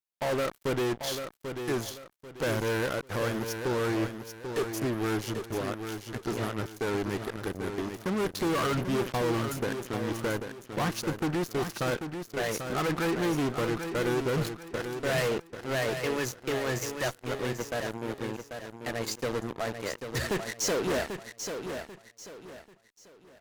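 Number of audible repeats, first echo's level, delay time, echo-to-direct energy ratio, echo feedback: 3, -7.5 dB, 790 ms, -7.0 dB, 32%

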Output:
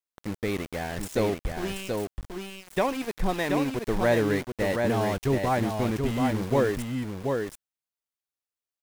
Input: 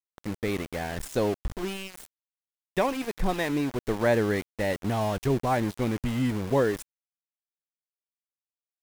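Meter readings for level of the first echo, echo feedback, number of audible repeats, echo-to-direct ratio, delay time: -4.5 dB, no regular repeats, 1, -4.5 dB, 730 ms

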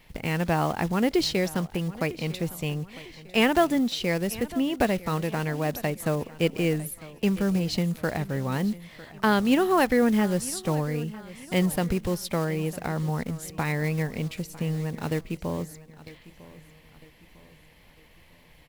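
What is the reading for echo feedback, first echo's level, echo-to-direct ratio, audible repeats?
44%, -18.5 dB, -17.5 dB, 3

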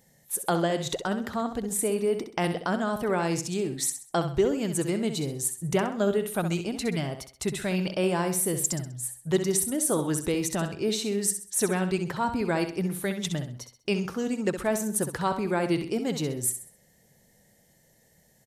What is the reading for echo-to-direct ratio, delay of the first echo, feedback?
-8.5 dB, 65 ms, 35%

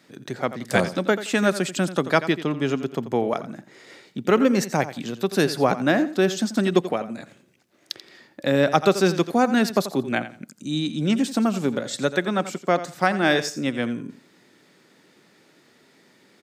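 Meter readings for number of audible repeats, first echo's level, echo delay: 2, -13.5 dB, 86 ms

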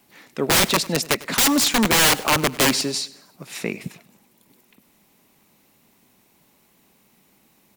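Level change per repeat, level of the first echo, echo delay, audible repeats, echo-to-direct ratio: -7.0 dB, -20.0 dB, 100 ms, 3, -19.0 dB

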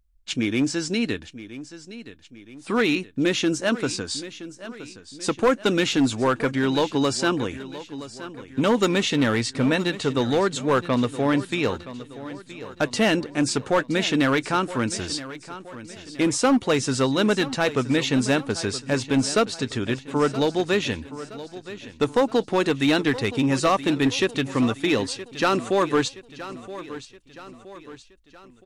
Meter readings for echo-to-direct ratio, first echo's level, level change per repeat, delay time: -14.0 dB, -15.0 dB, -6.5 dB, 971 ms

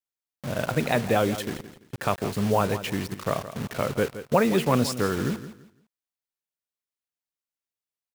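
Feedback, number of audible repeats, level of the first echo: 26%, 2, -13.0 dB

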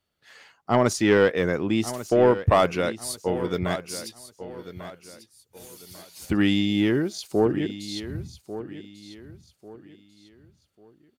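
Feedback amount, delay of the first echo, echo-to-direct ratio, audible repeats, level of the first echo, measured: 32%, 1144 ms, -13.0 dB, 3, -13.5 dB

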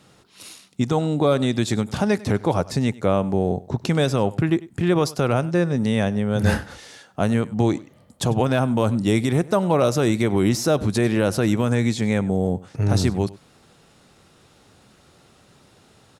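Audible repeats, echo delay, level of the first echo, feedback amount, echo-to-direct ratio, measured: 1, 98 ms, -20.5 dB, no regular repeats, -20.5 dB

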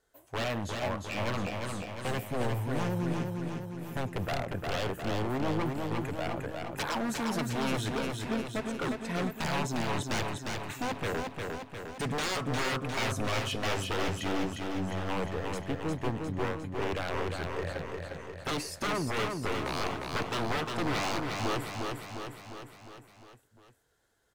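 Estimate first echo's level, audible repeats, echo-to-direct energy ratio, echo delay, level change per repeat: -4.0 dB, 6, -2.0 dB, 354 ms, -4.5 dB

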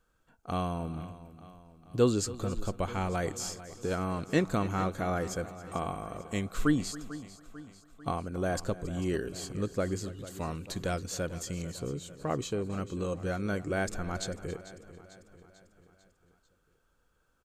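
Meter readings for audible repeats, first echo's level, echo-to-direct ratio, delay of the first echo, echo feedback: 6, -18.0 dB, -12.5 dB, 275 ms, no regular repeats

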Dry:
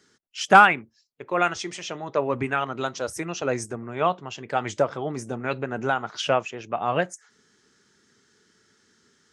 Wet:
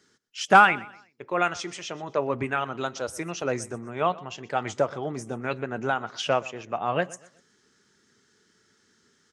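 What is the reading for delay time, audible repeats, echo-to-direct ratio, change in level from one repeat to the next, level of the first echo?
124 ms, 2, -20.0 dB, -9.0 dB, -20.5 dB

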